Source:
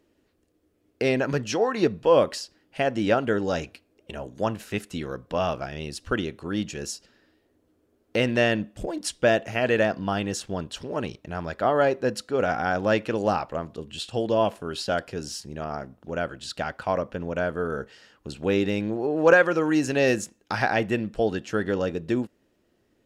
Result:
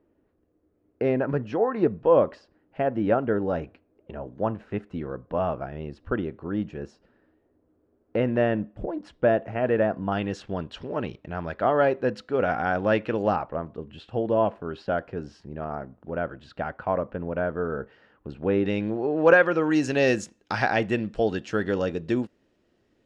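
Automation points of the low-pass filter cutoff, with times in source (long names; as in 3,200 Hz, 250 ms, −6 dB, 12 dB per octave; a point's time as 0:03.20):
1,300 Hz
from 0:10.12 2,800 Hz
from 0:13.36 1,600 Hz
from 0:18.66 3,400 Hz
from 0:19.71 6,200 Hz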